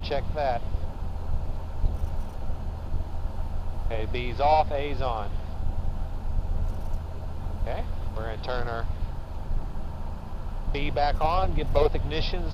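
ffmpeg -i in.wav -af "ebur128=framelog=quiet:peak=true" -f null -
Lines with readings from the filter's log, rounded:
Integrated loudness:
  I:         -30.7 LUFS
  Threshold: -40.7 LUFS
Loudness range:
  LRA:         5.4 LU
  Threshold: -51.3 LUFS
  LRA low:   -34.4 LUFS
  LRA high:  -29.0 LUFS
True peak:
  Peak:       -9.1 dBFS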